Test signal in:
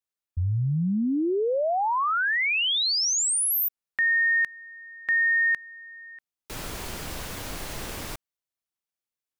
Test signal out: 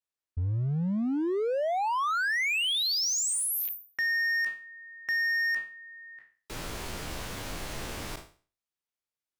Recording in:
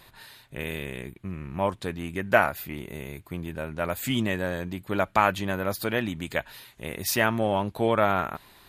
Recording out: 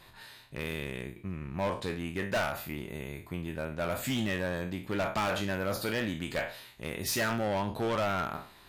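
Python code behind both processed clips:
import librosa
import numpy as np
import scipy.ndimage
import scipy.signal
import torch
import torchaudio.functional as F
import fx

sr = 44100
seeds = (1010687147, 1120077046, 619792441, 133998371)

y = fx.spec_trails(x, sr, decay_s=0.39)
y = fx.high_shelf(y, sr, hz=11000.0, db=-8.0)
y = np.clip(10.0 ** (23.0 / 20.0) * y, -1.0, 1.0) / 10.0 ** (23.0 / 20.0)
y = F.gain(torch.from_numpy(y), -3.0).numpy()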